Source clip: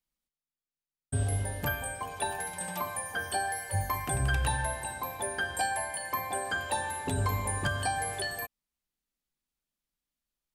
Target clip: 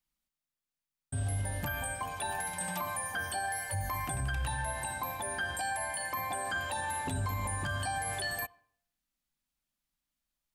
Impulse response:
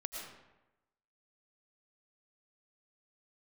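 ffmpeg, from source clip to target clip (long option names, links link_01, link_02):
-filter_complex "[0:a]equalizer=frequency=430:width_type=o:width=0.45:gain=-10,asplit=2[link_01][link_02];[1:a]atrim=start_sample=2205,asetrate=70560,aresample=44100,lowpass=4100[link_03];[link_02][link_03]afir=irnorm=-1:irlink=0,volume=-17dB[link_04];[link_01][link_04]amix=inputs=2:normalize=0,alimiter=level_in=3.5dB:limit=-24dB:level=0:latency=1:release=56,volume=-3.5dB,volume=1.5dB"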